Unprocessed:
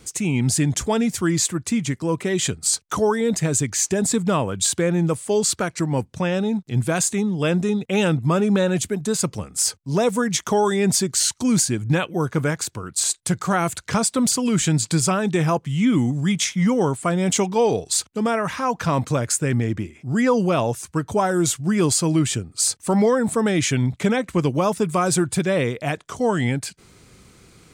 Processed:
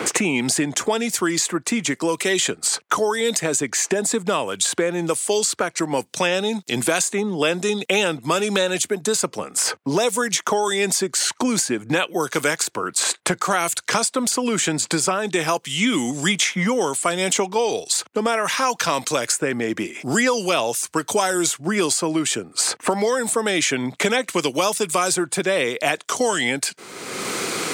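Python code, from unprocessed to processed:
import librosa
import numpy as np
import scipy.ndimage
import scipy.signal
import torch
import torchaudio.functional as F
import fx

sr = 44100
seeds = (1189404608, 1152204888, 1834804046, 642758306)

y = scipy.signal.sosfilt(scipy.signal.butter(2, 370.0, 'highpass', fs=sr, output='sos'), x)
y = fx.band_squash(y, sr, depth_pct=100)
y = y * 10.0 ** (2.0 / 20.0)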